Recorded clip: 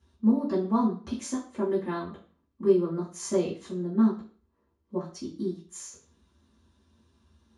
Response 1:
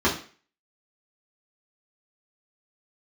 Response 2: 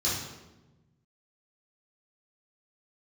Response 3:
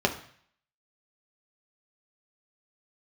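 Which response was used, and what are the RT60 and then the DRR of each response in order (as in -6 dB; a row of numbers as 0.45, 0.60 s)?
1; 0.40, 1.1, 0.55 s; -8.0, -9.5, 2.5 dB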